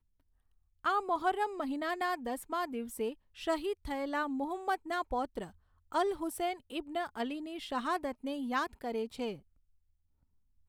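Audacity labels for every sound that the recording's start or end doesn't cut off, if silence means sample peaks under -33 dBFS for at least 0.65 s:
0.850000	9.310000	sound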